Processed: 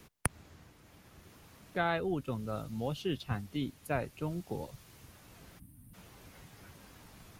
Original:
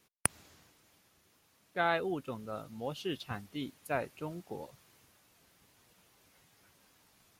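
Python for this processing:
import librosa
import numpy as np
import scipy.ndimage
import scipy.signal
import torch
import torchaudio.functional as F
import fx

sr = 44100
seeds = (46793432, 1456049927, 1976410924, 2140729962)

y = fx.low_shelf(x, sr, hz=89.0, db=11.5)
y = fx.spec_box(y, sr, start_s=5.59, length_s=0.35, low_hz=320.0, high_hz=8200.0, gain_db=-22)
y = fx.low_shelf(y, sr, hz=230.0, db=6.5)
y = fx.band_squash(y, sr, depth_pct=40)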